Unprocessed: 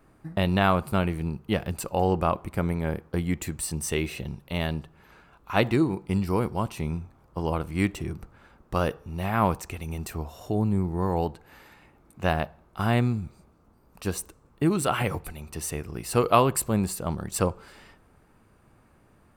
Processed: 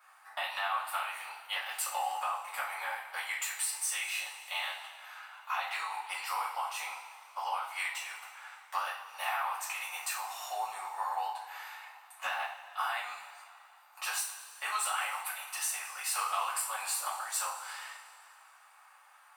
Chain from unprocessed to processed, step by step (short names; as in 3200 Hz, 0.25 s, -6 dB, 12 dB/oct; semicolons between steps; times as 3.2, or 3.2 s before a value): elliptic high-pass 800 Hz, stop band 60 dB; limiter -19 dBFS, peak gain reduction 10.5 dB; compressor, threshold -38 dBFS, peak gain reduction 12.5 dB; reverb, pre-delay 3 ms, DRR -8.5 dB; gain -1 dB